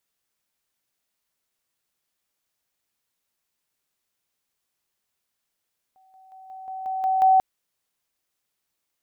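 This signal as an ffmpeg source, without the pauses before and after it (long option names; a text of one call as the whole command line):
ffmpeg -f lavfi -i "aevalsrc='pow(10,(-55+6*floor(t/0.18))/20)*sin(2*PI*759*t)':duration=1.44:sample_rate=44100" out.wav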